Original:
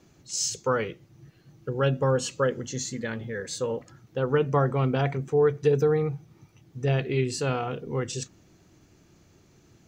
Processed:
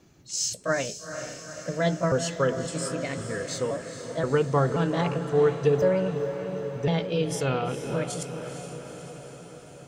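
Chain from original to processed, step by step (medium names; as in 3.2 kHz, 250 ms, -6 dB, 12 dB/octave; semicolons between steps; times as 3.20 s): pitch shift switched off and on +3.5 st, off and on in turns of 529 ms; echo that smears into a reverb 453 ms, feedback 66%, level -9 dB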